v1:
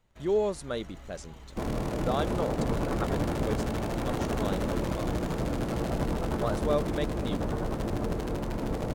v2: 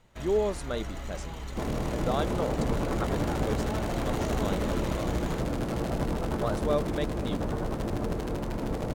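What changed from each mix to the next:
first sound +10.0 dB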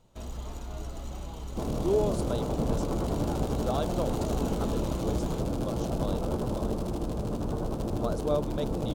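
speech: entry +1.60 s; master: add peaking EQ 1.9 kHz -13.5 dB 0.87 oct

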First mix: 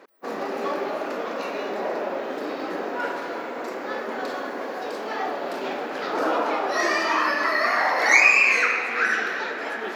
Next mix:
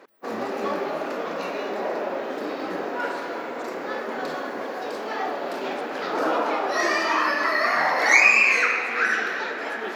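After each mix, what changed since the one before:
speech +12.0 dB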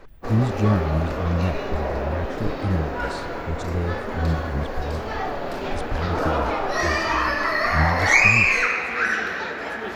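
speech +10.5 dB; master: remove high-pass 240 Hz 24 dB/octave

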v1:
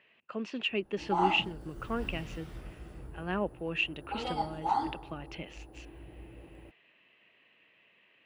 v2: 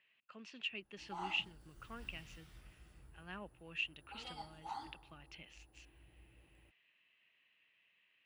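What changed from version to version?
master: add amplifier tone stack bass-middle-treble 5-5-5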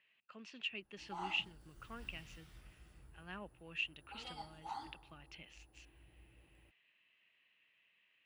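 no change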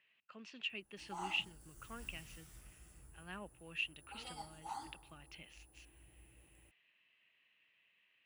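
background: add resonant high shelf 5.5 kHz +10.5 dB, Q 1.5

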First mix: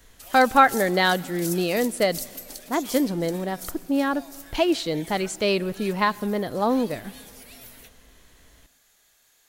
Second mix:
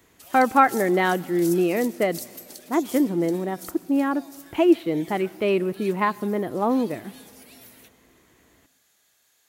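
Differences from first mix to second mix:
speech: add cabinet simulation 110–2600 Hz, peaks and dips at 340 Hz +7 dB, 550 Hz -3 dB, 1.6 kHz -4 dB; background -3.0 dB

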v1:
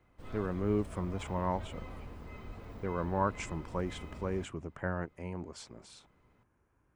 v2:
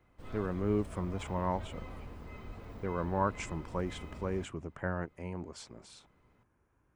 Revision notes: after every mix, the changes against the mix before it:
no change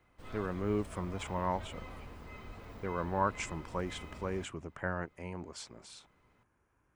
master: add tilt shelf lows -3 dB, about 740 Hz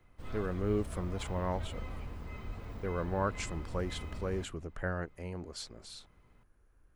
speech: remove cabinet simulation 100–9400 Hz, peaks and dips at 470 Hz -3 dB, 960 Hz +7 dB, 2.3 kHz +4 dB, 4.2 kHz -7 dB; background: add bass shelf 190 Hz +8.5 dB

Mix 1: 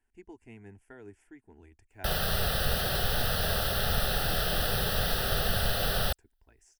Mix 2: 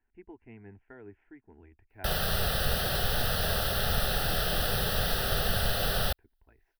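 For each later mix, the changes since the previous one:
speech: add low-pass 2.5 kHz 24 dB/octave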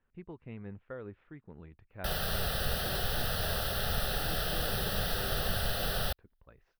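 speech: remove static phaser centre 800 Hz, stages 8; background -4.0 dB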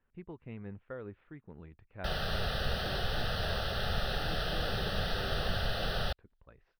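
master: add Savitzky-Golay filter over 15 samples

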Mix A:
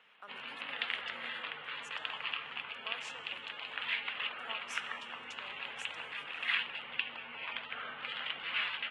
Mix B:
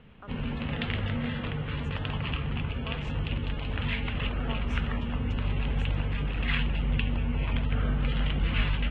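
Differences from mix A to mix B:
speech: add band-pass filter 1.4 kHz, Q 0.69; master: remove high-pass 1.1 kHz 12 dB/octave

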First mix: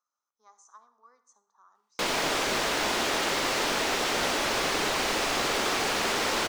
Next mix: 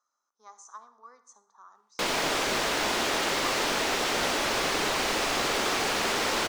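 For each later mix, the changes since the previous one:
speech +7.5 dB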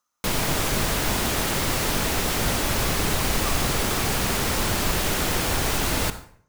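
background: entry -1.75 s; master: remove three-band isolator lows -20 dB, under 270 Hz, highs -15 dB, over 7.1 kHz

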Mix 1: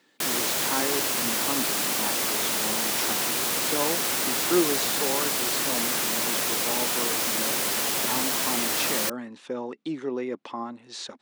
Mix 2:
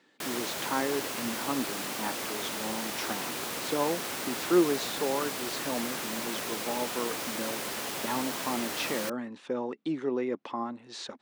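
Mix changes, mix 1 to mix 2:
background -5.5 dB; master: add treble shelf 3.9 kHz -7 dB

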